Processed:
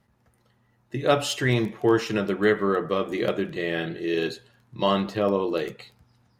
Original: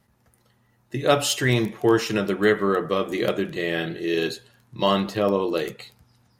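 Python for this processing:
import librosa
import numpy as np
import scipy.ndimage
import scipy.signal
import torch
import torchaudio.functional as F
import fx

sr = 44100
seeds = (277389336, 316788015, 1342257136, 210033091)

y = fx.high_shelf(x, sr, hz=5900.0, db=-9.0)
y = y * 10.0 ** (-1.5 / 20.0)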